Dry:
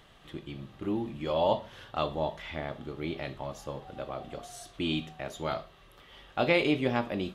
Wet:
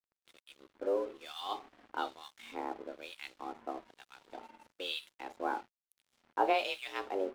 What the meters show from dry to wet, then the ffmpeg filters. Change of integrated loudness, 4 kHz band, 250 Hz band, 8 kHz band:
-5.5 dB, -4.0 dB, -12.5 dB, -8.0 dB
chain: -filter_complex "[0:a]afreqshift=190,acrossover=split=1600[a][b];[a]aeval=exprs='val(0)*(1-1/2+1/2*cos(2*PI*1.1*n/s))':c=same[c];[b]aeval=exprs='val(0)*(1-1/2-1/2*cos(2*PI*1.1*n/s))':c=same[d];[c][d]amix=inputs=2:normalize=0,aeval=exprs='sgn(val(0))*max(abs(val(0))-0.00224,0)':c=same"

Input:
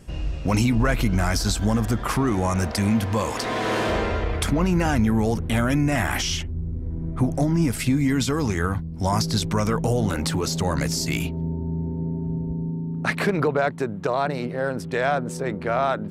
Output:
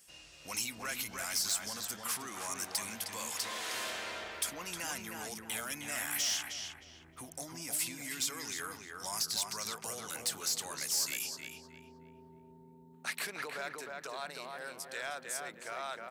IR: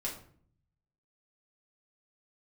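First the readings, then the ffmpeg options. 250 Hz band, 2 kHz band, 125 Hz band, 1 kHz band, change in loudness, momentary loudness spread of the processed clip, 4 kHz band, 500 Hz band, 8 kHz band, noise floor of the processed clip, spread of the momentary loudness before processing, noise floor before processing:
-27.5 dB, -11.0 dB, -33.5 dB, -16.0 dB, -12.5 dB, 12 LU, -6.0 dB, -21.0 dB, -2.0 dB, -57 dBFS, 7 LU, -32 dBFS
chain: -filter_complex "[0:a]aderivative,asplit=2[a][b];[b]adelay=311,lowpass=f=2.1k:p=1,volume=-3dB,asplit=2[c][d];[d]adelay=311,lowpass=f=2.1k:p=1,volume=0.39,asplit=2[e][f];[f]adelay=311,lowpass=f=2.1k:p=1,volume=0.39,asplit=2[g][h];[h]adelay=311,lowpass=f=2.1k:p=1,volume=0.39,asplit=2[i][j];[j]adelay=311,lowpass=f=2.1k:p=1,volume=0.39[k];[a][c][e][g][i][k]amix=inputs=6:normalize=0,asoftclip=type=tanh:threshold=-25.5dB"

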